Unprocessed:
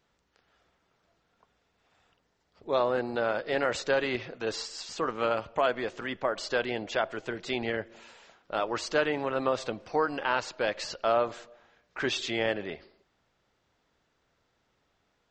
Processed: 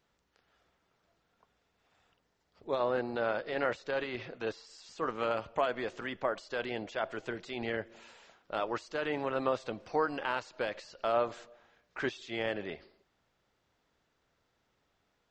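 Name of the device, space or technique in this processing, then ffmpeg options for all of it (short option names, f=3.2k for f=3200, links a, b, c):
de-esser from a sidechain: -filter_complex "[0:a]asplit=2[a][b];[b]highpass=f=4.8k:w=0.5412,highpass=f=4.8k:w=1.3066,apad=whole_len=674831[c];[a][c]sidechaincompress=threshold=-50dB:ratio=6:attack=2.2:release=81,asettb=1/sr,asplit=3[d][e][f];[d]atrim=end=2.804[g];[e]atrim=start=2.8:end=4.67,asetpts=PTS-STARTPTS,afade=t=in:d=0.004:c=qsin,afade=t=out:st=1.866:d=0.004:c=qsin,lowpass=6k[h];[f]atrim=start=4.666[i];[g][h]acrossfade=d=0.004:c1=hsin:c2=qsin[j];[j][i]acrossfade=d=0.004:c1=qsin:c2=hsin,volume=-3dB"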